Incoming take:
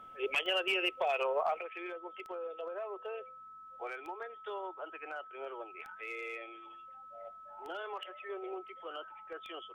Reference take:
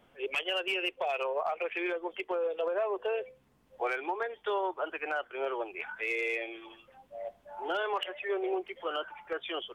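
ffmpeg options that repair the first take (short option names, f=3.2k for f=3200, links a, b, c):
-af "adeclick=t=4,bandreject=f=1.3k:w=30,asetnsamples=n=441:p=0,asendcmd='1.61 volume volume 10dB',volume=0dB"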